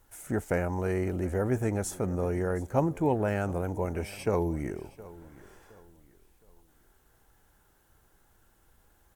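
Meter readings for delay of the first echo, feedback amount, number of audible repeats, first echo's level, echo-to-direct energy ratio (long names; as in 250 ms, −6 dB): 716 ms, 35%, 2, −19.5 dB, −19.0 dB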